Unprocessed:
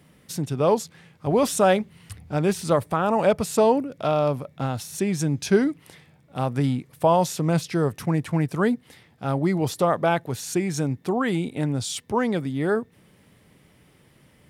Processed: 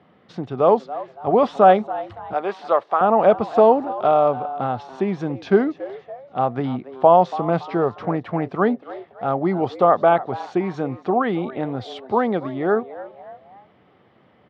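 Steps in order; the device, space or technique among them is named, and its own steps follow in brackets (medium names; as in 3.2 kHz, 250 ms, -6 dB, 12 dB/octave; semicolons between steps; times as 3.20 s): 2.33–3.01 s: high-pass 540 Hz 12 dB/octave; peaking EQ 330 Hz +5.5 dB 2.2 oct; frequency-shifting delay pedal into a guitar cabinet (frequency-shifting echo 283 ms, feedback 37%, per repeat +130 Hz, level -17.5 dB; cabinet simulation 110–3500 Hz, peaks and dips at 150 Hz -8 dB, 280 Hz -5 dB, 740 Hz +9 dB, 1.2 kHz +7 dB, 2.5 kHz -4 dB); trim -1 dB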